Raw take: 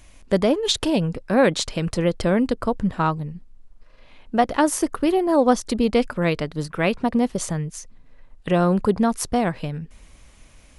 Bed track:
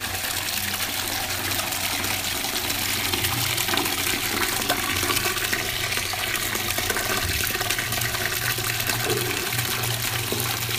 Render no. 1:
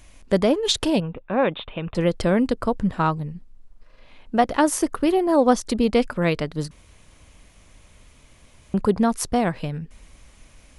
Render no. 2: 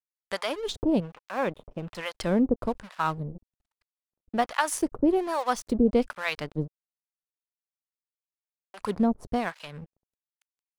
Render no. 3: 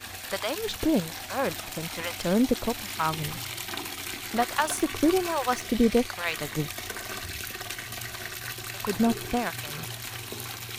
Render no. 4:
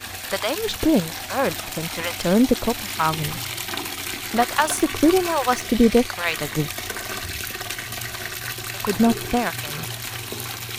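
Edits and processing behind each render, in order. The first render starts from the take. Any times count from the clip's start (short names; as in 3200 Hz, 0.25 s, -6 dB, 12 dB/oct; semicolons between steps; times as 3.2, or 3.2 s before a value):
1–1.95 rippled Chebyshev low-pass 3700 Hz, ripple 6 dB; 6.71–8.74 room tone
crossover distortion -38 dBFS; harmonic tremolo 1.2 Hz, depth 100%, crossover 770 Hz
add bed track -11.5 dB
gain +6 dB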